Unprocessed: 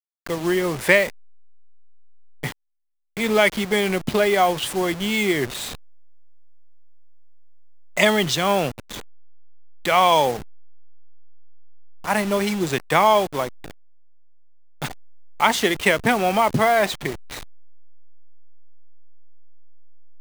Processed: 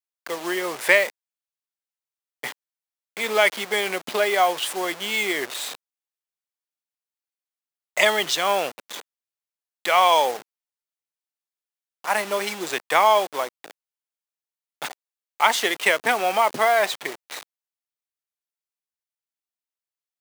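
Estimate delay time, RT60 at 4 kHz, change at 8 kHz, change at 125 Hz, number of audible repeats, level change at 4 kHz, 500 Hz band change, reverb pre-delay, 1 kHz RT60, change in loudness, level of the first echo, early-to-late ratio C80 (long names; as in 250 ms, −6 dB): no echo audible, no reverb audible, 0.0 dB, below −15 dB, no echo audible, 0.0 dB, −2.5 dB, no reverb audible, no reverb audible, −1.5 dB, no echo audible, no reverb audible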